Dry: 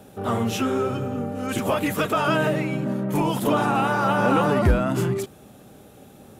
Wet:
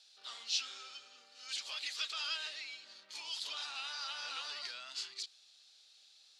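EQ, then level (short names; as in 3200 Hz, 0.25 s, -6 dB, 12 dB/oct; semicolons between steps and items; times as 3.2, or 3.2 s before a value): ladder band-pass 4800 Hz, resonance 70%; air absorption 89 m; +11.5 dB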